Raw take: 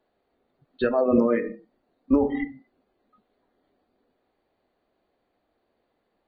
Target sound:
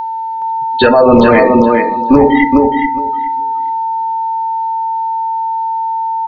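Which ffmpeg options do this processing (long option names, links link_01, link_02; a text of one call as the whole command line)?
ffmpeg -i in.wav -filter_complex "[0:a]asettb=1/sr,asplit=3[link_01][link_02][link_03];[link_01]atrim=end=0.904[link_04];[link_02]atrim=start=0.9:end=2.18,asetpts=PTS-STARTPTS,afade=type=in:duration=0.004:curve=qsin,afade=type=out:start_time=1.276:duration=0.004:curve=qsin,equalizer=frequency=4000:width_type=o:width=0.26:gain=11[link_05];[link_03]atrim=start=2.176[link_06];[link_04][link_05]acrossfade=duration=0.004:curve1=hsin:curve2=qsin[link_07];[link_07][link_06]acrossfade=duration=0.004:curve1=qsin:curve2=hsin,aeval=exprs='val(0)+0.0158*sin(2*PI*900*n/s)':channel_layout=same,highshelf=frequency=2100:gain=10,asplit=2[link_08][link_09];[link_09]aecho=0:1:419|838|1257:0.473|0.0804|0.0137[link_10];[link_08][link_10]amix=inputs=2:normalize=0,apsyclip=19dB,volume=-1.5dB" out.wav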